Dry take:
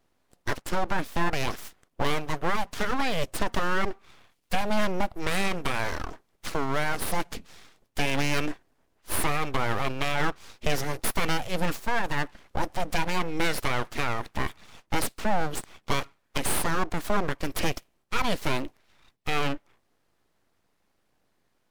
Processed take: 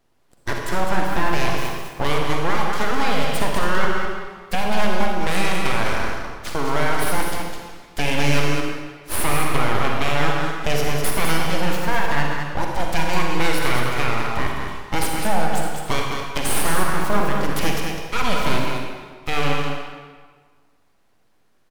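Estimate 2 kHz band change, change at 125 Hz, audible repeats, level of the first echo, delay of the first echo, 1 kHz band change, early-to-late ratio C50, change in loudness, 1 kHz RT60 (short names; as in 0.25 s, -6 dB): +6.5 dB, +7.5 dB, 1, -5.5 dB, 0.206 s, +7.0 dB, -0.5 dB, +6.5 dB, 1.6 s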